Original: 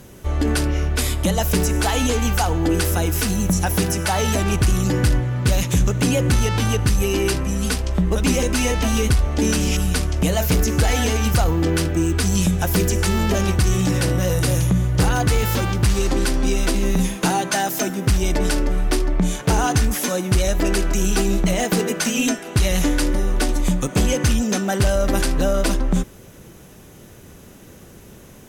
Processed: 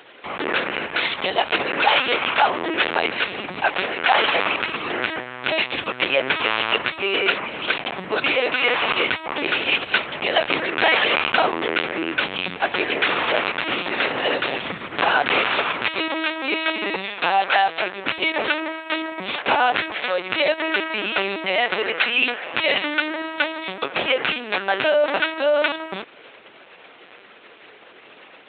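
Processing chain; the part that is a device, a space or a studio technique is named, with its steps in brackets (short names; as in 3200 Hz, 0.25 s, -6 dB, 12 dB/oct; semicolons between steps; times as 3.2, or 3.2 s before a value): talking toy (LPC vocoder at 8 kHz pitch kept; HPF 670 Hz 12 dB/oct; bell 2400 Hz +5 dB 0.55 oct); gain +6 dB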